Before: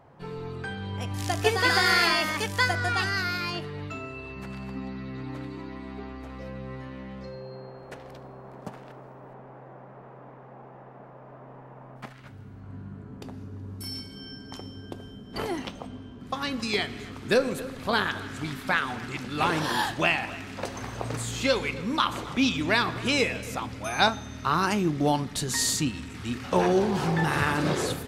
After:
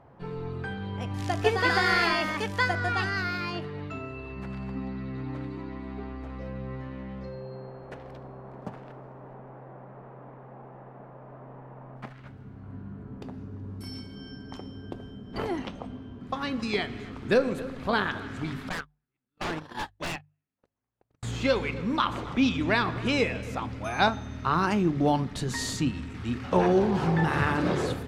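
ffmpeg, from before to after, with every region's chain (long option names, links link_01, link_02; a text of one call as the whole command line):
ffmpeg -i in.wav -filter_complex "[0:a]asettb=1/sr,asplit=3[link_01][link_02][link_03];[link_01]atrim=end=18.694[link_04];[link_02]atrim=start=18.69:end=21.23,asetpts=PTS-STARTPTS,afade=type=in:duration=0.004:curve=qsin,afade=type=out:start_time=2.536:duration=0.004:curve=qsin,agate=range=-53dB:threshold=-26dB:ratio=16:release=100:detection=peak,aeval=exprs='0.0596*(abs(mod(val(0)/0.0596+3,4)-2)-1)':channel_layout=same[link_05];[link_03]atrim=start=21.226[link_06];[link_04][link_05]acrossfade=duration=0.004:curve1=hsin:curve2=qsin[link_07];[link_07][link_06]acrossfade=duration=0.004:curve1=qsin:curve2=hsin,lowpass=frequency=2400:poles=1,lowshelf=frequency=130:gain=5,bandreject=frequency=50:width_type=h:width=6,bandreject=frequency=100:width_type=h:width=6,bandreject=frequency=150:width_type=h:width=6" out.wav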